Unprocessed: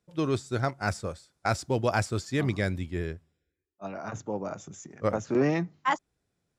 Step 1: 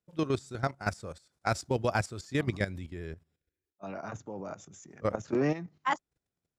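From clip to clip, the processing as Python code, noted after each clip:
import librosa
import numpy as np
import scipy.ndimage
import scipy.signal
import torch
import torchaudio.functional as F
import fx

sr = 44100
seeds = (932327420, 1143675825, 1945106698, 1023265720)

y = fx.level_steps(x, sr, step_db=13)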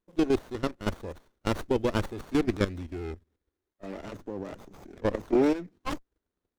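y = fx.fixed_phaser(x, sr, hz=340.0, stages=4)
y = fx.running_max(y, sr, window=17)
y = F.gain(torch.from_numpy(y), 7.0).numpy()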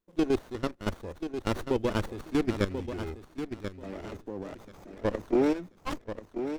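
y = fx.echo_feedback(x, sr, ms=1036, feedback_pct=18, wet_db=-9)
y = F.gain(torch.from_numpy(y), -1.5).numpy()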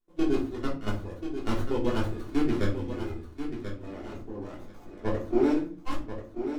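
y = fx.room_shoebox(x, sr, seeds[0], volume_m3=260.0, walls='furnished', distance_m=3.3)
y = F.gain(torch.from_numpy(y), -7.5).numpy()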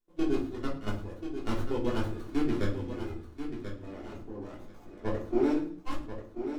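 y = fx.echo_feedback(x, sr, ms=105, feedback_pct=34, wet_db=-18.0)
y = F.gain(torch.from_numpy(y), -3.0).numpy()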